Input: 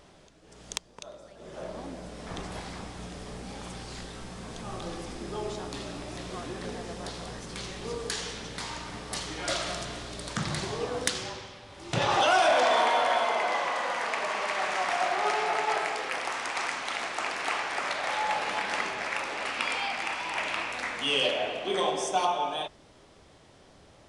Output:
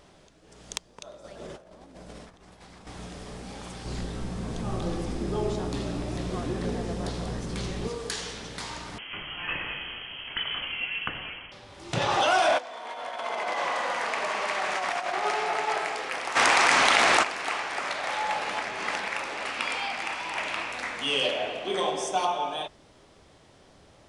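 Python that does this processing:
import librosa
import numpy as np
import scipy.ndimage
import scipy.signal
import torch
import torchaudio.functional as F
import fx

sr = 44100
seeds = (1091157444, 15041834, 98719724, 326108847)

y = fx.over_compress(x, sr, threshold_db=-45.0, ratio=-0.5, at=(1.24, 2.87))
y = fx.low_shelf(y, sr, hz=480.0, db=10.5, at=(3.85, 7.88))
y = fx.freq_invert(y, sr, carrier_hz=3200, at=(8.98, 11.52))
y = fx.over_compress(y, sr, threshold_db=-29.0, ratio=-0.5, at=(12.57, 15.22), fade=0.02)
y = fx.env_flatten(y, sr, amount_pct=100, at=(16.35, 17.22), fade=0.02)
y = fx.edit(y, sr, fx.reverse_span(start_s=18.61, length_s=0.47), tone=tone)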